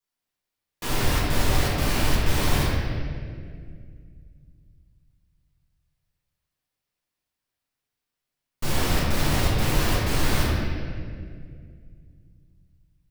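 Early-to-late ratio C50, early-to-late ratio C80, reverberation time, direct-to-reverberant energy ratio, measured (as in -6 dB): -2.5 dB, -0.5 dB, 2.1 s, -8.0 dB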